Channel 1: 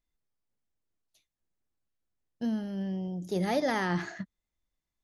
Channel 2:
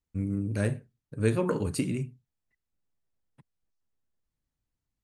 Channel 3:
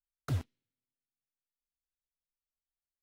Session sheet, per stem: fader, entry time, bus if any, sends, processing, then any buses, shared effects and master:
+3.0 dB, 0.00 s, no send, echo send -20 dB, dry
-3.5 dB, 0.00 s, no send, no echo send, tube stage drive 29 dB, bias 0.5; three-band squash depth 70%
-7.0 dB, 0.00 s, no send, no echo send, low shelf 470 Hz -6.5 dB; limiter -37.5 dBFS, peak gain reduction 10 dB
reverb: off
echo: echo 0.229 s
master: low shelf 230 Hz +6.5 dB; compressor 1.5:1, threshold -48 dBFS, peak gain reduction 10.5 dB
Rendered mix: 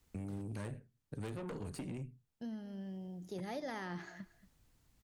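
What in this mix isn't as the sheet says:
stem 1 +3.0 dB -> -8.0 dB; master: missing low shelf 230 Hz +6.5 dB

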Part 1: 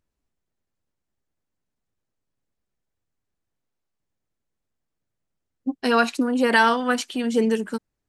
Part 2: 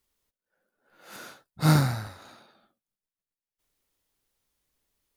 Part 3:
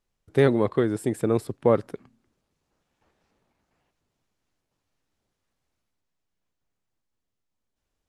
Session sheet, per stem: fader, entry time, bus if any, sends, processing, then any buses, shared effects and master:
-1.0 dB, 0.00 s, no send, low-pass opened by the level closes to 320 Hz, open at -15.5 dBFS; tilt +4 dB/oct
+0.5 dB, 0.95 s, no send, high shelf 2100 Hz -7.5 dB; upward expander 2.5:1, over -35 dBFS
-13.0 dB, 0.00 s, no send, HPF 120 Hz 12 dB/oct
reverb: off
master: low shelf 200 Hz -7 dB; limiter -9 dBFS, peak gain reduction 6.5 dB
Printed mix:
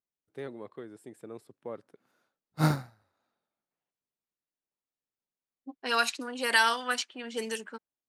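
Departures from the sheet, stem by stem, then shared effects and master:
stem 1 -1.0 dB -> -7.5 dB; stem 3 -13.0 dB -> -19.0 dB

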